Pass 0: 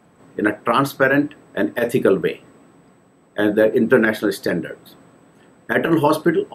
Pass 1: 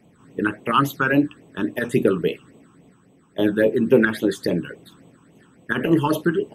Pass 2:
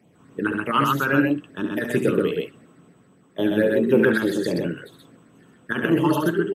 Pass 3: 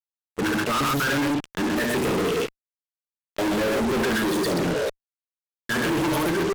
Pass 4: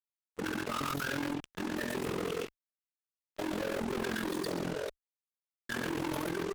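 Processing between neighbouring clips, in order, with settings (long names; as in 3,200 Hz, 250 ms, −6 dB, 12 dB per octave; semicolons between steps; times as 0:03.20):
all-pass phaser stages 8, 3.6 Hz, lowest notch 570–1,600 Hz
high-pass filter 74 Hz; on a send: loudspeakers that aren't time-aligned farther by 24 metres −7 dB, 44 metres −2 dB; on the sum: level −3 dB
healed spectral selection 0:04.61–0:04.87, 420–1,000 Hz before; fuzz pedal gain 39 dB, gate −38 dBFS; level −8.5 dB
amplitude modulation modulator 43 Hz, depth 65%; level −8.5 dB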